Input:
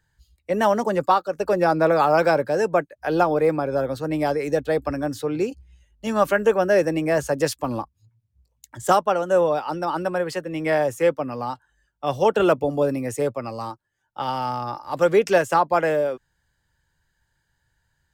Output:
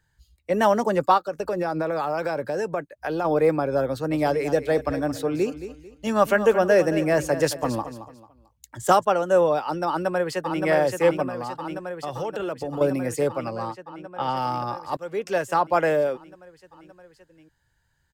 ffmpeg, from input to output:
ffmpeg -i in.wav -filter_complex "[0:a]asplit=3[link_01][link_02][link_03];[link_01]afade=type=out:start_time=1.17:duration=0.02[link_04];[link_02]acompressor=threshold=-22dB:ratio=6:attack=3.2:release=140:knee=1:detection=peak,afade=type=in:start_time=1.17:duration=0.02,afade=type=out:start_time=3.24:duration=0.02[link_05];[link_03]afade=type=in:start_time=3.24:duration=0.02[link_06];[link_04][link_05][link_06]amix=inputs=3:normalize=0,asettb=1/sr,asplit=3[link_07][link_08][link_09];[link_07]atrim=end=3.884[link_10];[link_08]atrim=start=3.88:end=9.05,asetpts=PTS-STARTPTS,afade=type=in:duration=0.004:curve=qsin,afade=type=out:start_time=5.166:duration=0.004:curve=qsin,aecho=1:1:222|444|666:0.251|0.0779|0.0241,atrim=end_sample=227997[link_11];[link_09]atrim=start=9.046[link_12];[link_10][link_11]acrossfade=duration=0.004:curve1=hsin:curve2=qsin[link_13];[link_13][link_12]acrossfade=duration=0.004:curve1=qsin:curve2=hsin,asplit=2[link_14][link_15];[link_15]afade=type=in:start_time=9.87:duration=0.01,afade=type=out:start_time=10.64:duration=0.01,aecho=0:1:570|1140|1710|2280|2850|3420|3990|4560|5130|5700|6270|6840:0.595662|0.47653|0.381224|0.304979|0.243983|0.195187|0.156149|0.124919|0.0999355|0.0799484|0.0639587|0.051167[link_16];[link_14][link_16]amix=inputs=2:normalize=0,asettb=1/sr,asplit=3[link_17][link_18][link_19];[link_17]atrim=end=11.284[link_20];[link_18]atrim=start=11.28:end=12.81,asetpts=PTS-STARTPTS,afade=type=in:duration=0.004:curve=qsin,afade=type=out:start_time=1.526:duration=0.004:curve=qsin,acompressor=threshold=-26dB:ratio=6:attack=3.2:release=140:knee=1:detection=peak[link_21];[link_19]atrim=start=12.806[link_22];[link_20][link_21]acrossfade=duration=0.004:curve1=hsin:curve2=qsin[link_23];[link_23][link_22]acrossfade=duration=0.004:curve1=qsin:curve2=hsin,asettb=1/sr,asplit=3[link_24][link_25][link_26];[link_24]atrim=end=13.484[link_27];[link_25]atrim=start=13.48:end=14.37,asetpts=PTS-STARTPTS,afade=type=in:duration=0.004:curve=qsin,afade=type=out:start_time=0.886:duration=0.004:curve=qsin,aemphasis=mode=reproduction:type=cd[link_28];[link_26]atrim=start=14.366[link_29];[link_27][link_28]acrossfade=duration=0.004:curve1=hsin:curve2=qsin[link_30];[link_30][link_29]acrossfade=duration=0.004:curve1=qsin:curve2=hsin,asplit=2[link_31][link_32];[link_31]atrim=end=14.97,asetpts=PTS-STARTPTS,afade=type=out:start_time=14.966:duration=0.004:curve=hsin:silence=0.0707946[link_33];[link_32]atrim=start=14.97,asetpts=PTS-STARTPTS,afade=type=in:duration=0.88:silence=0.0707946[link_34];[link_33][link_34]concat=n=2:v=0:a=1" out.wav

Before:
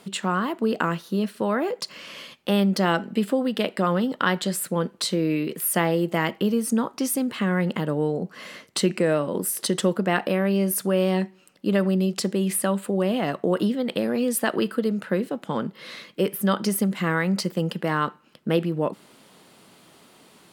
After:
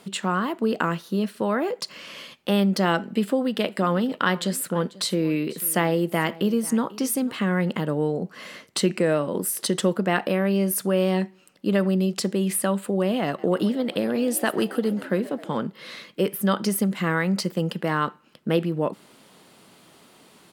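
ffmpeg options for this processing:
ffmpeg -i in.wav -filter_complex "[0:a]asplit=3[link_01][link_02][link_03];[link_01]afade=type=out:start_time=3.53:duration=0.02[link_04];[link_02]aecho=1:1:492:0.1,afade=type=in:start_time=3.53:duration=0.02,afade=type=out:start_time=7.42:duration=0.02[link_05];[link_03]afade=type=in:start_time=7.42:duration=0.02[link_06];[link_04][link_05][link_06]amix=inputs=3:normalize=0,asettb=1/sr,asplit=3[link_07][link_08][link_09];[link_07]atrim=end=13.254[link_10];[link_08]atrim=start=13.25:end=15.62,asetpts=PTS-STARTPTS,afade=type=in:duration=0.004:curve=qsin,afade=type=out:start_time=2.366:duration=0.004:curve=qsin,asplit=7[link_11][link_12][link_13][link_14][link_15][link_16][link_17];[link_12]adelay=133,afreqshift=59,volume=-18dB[link_18];[link_13]adelay=266,afreqshift=118,volume=-21.7dB[link_19];[link_14]adelay=399,afreqshift=177,volume=-25.5dB[link_20];[link_15]adelay=532,afreqshift=236,volume=-29.2dB[link_21];[link_16]adelay=665,afreqshift=295,volume=-33dB[link_22];[link_17]adelay=798,afreqshift=354,volume=-36.7dB[link_23];[link_11][link_18][link_19][link_20][link_21][link_22][link_23]amix=inputs=7:normalize=0,atrim=end_sample=104517[link_24];[link_09]atrim=start=15.616[link_25];[link_10][link_24]acrossfade=duration=0.004:curve1=hsin:curve2=qsin[link_26];[link_26][link_25]acrossfade=duration=0.004:curve1=qsin:curve2=hsin" out.wav

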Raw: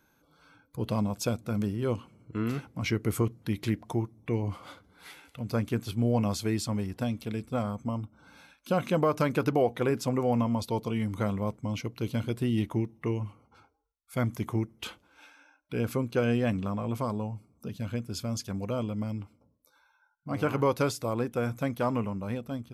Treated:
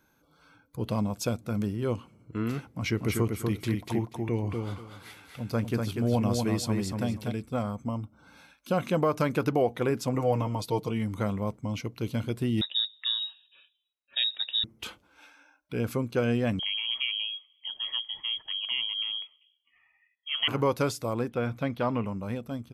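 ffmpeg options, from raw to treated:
ffmpeg -i in.wav -filter_complex "[0:a]asplit=3[link_01][link_02][link_03];[link_01]afade=type=out:start_time=2.95:duration=0.02[link_04];[link_02]aecho=1:1:242|484|726:0.631|0.133|0.0278,afade=type=in:start_time=2.95:duration=0.02,afade=type=out:start_time=7.31:duration=0.02[link_05];[link_03]afade=type=in:start_time=7.31:duration=0.02[link_06];[link_04][link_05][link_06]amix=inputs=3:normalize=0,asettb=1/sr,asplit=3[link_07][link_08][link_09];[link_07]atrim=end=10.144[link_10];[link_08]atrim=start=10.14:end=10.89,asetpts=PTS-STARTPTS,afade=type=in:duration=0.004:curve=qsin,afade=type=out:start_time=0.746:duration=0.004:curve=qsin,aecho=1:1:6.4:0.65,atrim=end_sample=33075[link_11];[link_09]atrim=start=10.886[link_12];[link_10][link_11]acrossfade=duration=0.004:curve1=hsin:curve2=qsin[link_13];[link_13][link_12]acrossfade=duration=0.004:curve1=qsin:curve2=hsin,asettb=1/sr,asplit=3[link_14][link_15][link_16];[link_14]atrim=end=12.614[link_17];[link_15]atrim=start=12.61:end=14.64,asetpts=PTS-STARTPTS,afade=type=in:duration=0.004:curve=qsin,afade=type=out:start_time=2.026:duration=0.004:curve=qsin,lowpass=frequency=3300:width_type=q:width=0.5098,lowpass=frequency=3300:width_type=q:width=0.6013,lowpass=frequency=3300:width_type=q:width=0.9,lowpass=frequency=3300:width_type=q:width=2.563,afreqshift=-3900[link_18];[link_16]atrim=start=14.636[link_19];[link_17][link_18]acrossfade=duration=0.004:curve1=hsin:curve2=qsin[link_20];[link_20][link_19]acrossfade=duration=0.004:curve1=qsin:curve2=hsin,asettb=1/sr,asplit=3[link_21][link_22][link_23];[link_21]atrim=end=16.594[link_24];[link_22]atrim=start=16.59:end=20.48,asetpts=PTS-STARTPTS,afade=type=in:duration=0.004:curve=qsin,afade=type=out:start_time=3.886:duration=0.004:curve=qsin,lowpass=frequency=2900:width_type=q:width=0.5098,lowpass=frequency=2900:width_type=q:width=0.6013,lowpass=frequency=2900:width_type=q:width=0.9,lowpass=frequency=2900:width_type=q:width=2.563,afreqshift=-3400[link_25];[link_23]atrim=start=20.476[link_26];[link_24][link_25]acrossfade=duration=0.004:curve1=hsin:curve2=qsin[link_27];[link_27][link_26]acrossfade=duration=0.004:curve1=qsin:curve2=hsin,asettb=1/sr,asplit=3[link_28][link_29][link_30];[link_28]atrim=end=21.304[link_31];[link_29]atrim=start=21.3:end=22.06,asetpts=PTS-STARTPTS,afade=type=in:duration=0.004:curve=qsin,afade=type=out:start_time=0.756:duration=0.004:curve=qsin,highshelf=frequency=5300:width_type=q:width=1.5:gain=-10[link_32];[link_30]atrim=start=22.056[link_33];[link_31][link_32]acrossfade=duration=0.004:curve1=hsin:curve2=qsin[link_34];[link_34][link_33]acrossfade=duration=0.004:curve1=qsin:curve2=hsin" out.wav

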